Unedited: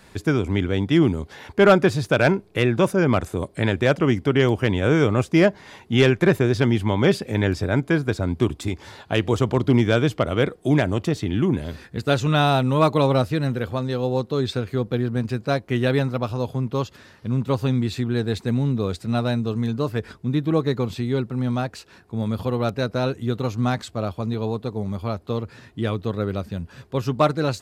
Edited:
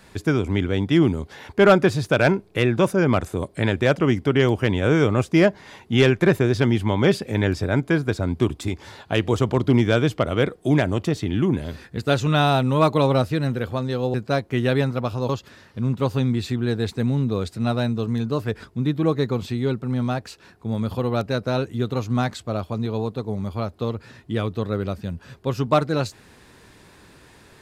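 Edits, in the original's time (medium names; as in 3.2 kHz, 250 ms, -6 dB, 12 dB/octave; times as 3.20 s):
14.14–15.32 s: delete
16.47–16.77 s: delete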